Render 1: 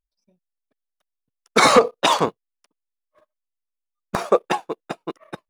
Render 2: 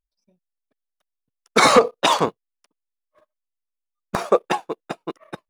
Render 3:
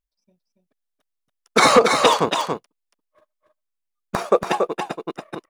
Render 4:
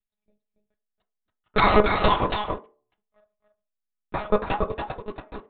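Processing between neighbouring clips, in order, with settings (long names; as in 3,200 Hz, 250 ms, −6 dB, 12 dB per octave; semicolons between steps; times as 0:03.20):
no processing that can be heard
single-tap delay 281 ms −5 dB
one-pitch LPC vocoder at 8 kHz 210 Hz; on a send at −6 dB: convolution reverb RT60 0.35 s, pre-delay 3 ms; on the sum: level −4.5 dB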